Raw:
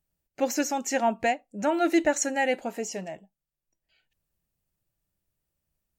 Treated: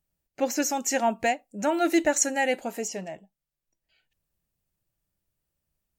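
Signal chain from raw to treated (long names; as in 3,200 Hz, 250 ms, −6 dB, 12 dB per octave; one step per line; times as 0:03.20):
0:00.62–0:02.88: high-shelf EQ 6,300 Hz +9 dB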